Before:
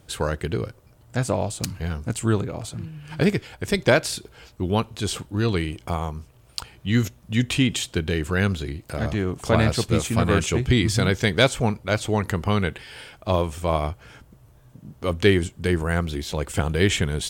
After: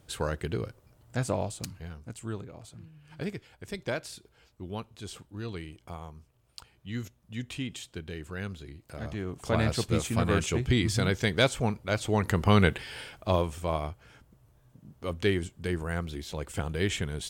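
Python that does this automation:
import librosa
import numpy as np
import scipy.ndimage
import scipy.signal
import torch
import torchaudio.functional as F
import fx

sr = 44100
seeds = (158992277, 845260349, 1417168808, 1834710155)

y = fx.gain(x, sr, db=fx.line((1.41, -6.0), (1.95, -15.0), (8.63, -15.0), (9.76, -6.0), (11.96, -6.0), (12.65, 2.0), (13.9, -9.0)))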